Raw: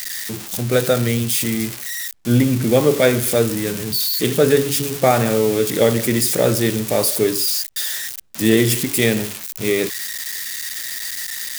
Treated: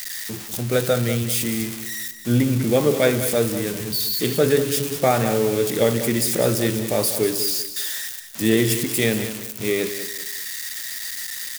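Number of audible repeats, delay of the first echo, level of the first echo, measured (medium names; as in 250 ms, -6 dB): 3, 194 ms, -11.0 dB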